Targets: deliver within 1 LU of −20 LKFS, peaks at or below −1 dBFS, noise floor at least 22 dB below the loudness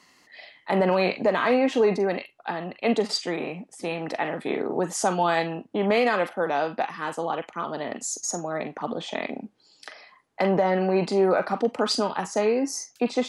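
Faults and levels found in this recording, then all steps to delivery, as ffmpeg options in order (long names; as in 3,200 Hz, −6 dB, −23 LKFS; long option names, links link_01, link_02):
integrated loudness −25.5 LKFS; sample peak −11.0 dBFS; target loudness −20.0 LKFS
→ -af "volume=5.5dB"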